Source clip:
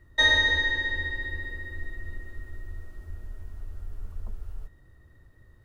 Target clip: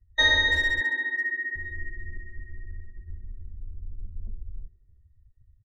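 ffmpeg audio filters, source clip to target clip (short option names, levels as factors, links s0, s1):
-filter_complex "[0:a]asettb=1/sr,asplit=3[s0][s1][s2];[s0]atrim=end=0.814[s3];[s1]atrim=start=0.81:end=1.56,asetpts=PTS-STARTPTS,afade=t=in:d=0.004:c=qsin,afade=t=out:st=0.746:d=0.004:c=qsin,highpass=f=190:w=0.5412,highpass=f=190:w=1.3066,equalizer=f=480:t=q:w=4:g=-3,equalizer=f=970:t=q:w=4:g=6,equalizer=f=1400:t=q:w=4:g=7,equalizer=f=2000:t=q:w=4:g=5,lowpass=f=2800:w=0.5412,lowpass=f=2800:w=1.3066[s4];[s2]atrim=start=1.556[s5];[s3][s4]acrossfade=d=0.004:c1=hsin:c2=qsin[s6];[s6][s5]acrossfade=d=0.004:c1=qsin:c2=hsin,afftdn=nr=31:nf=-40,asplit=2[s7][s8];[s8]adelay=330,highpass=300,lowpass=3400,asoftclip=type=hard:threshold=0.0944,volume=0.251[s9];[s7][s9]amix=inputs=2:normalize=0"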